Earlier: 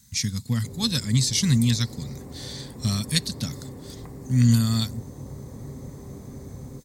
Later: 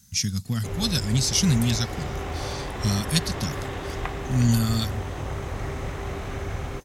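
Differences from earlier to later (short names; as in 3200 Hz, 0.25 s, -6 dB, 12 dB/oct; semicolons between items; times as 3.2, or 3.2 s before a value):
background: remove band-pass 190 Hz, Q 1.5; master: remove ripple EQ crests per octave 1, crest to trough 6 dB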